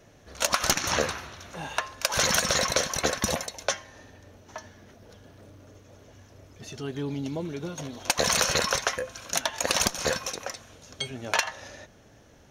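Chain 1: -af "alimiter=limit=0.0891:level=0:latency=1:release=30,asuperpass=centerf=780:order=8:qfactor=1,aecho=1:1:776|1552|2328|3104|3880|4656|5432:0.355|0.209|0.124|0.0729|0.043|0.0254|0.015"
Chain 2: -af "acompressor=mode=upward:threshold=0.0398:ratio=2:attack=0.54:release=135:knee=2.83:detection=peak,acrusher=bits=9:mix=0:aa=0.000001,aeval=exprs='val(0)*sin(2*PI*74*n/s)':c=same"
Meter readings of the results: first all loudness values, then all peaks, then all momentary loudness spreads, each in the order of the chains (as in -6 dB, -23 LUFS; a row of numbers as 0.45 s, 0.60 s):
-40.5 LUFS, -30.0 LUFS; -20.5 dBFS, -11.0 dBFS; 14 LU, 21 LU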